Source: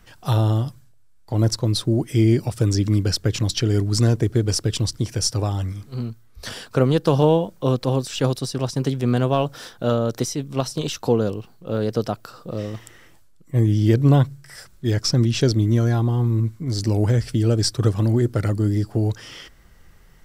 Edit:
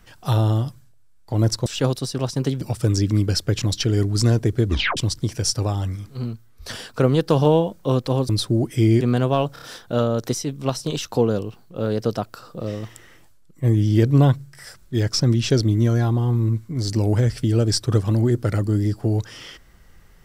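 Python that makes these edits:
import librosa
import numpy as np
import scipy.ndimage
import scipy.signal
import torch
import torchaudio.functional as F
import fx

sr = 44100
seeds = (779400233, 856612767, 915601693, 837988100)

y = fx.edit(x, sr, fx.swap(start_s=1.66, length_s=0.72, other_s=8.06, other_length_s=0.95),
    fx.tape_stop(start_s=4.43, length_s=0.31),
    fx.stutter(start_s=9.53, slice_s=0.03, count=4), tone=tone)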